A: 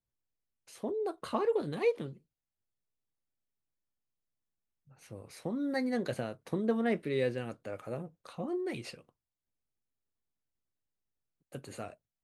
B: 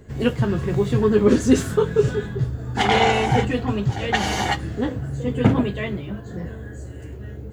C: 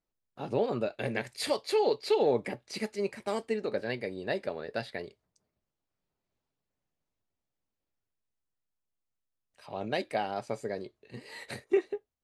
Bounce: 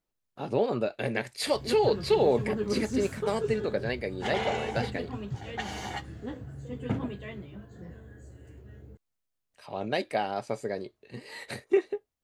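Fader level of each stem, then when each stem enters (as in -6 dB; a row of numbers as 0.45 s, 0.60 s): mute, -14.0 dB, +2.5 dB; mute, 1.45 s, 0.00 s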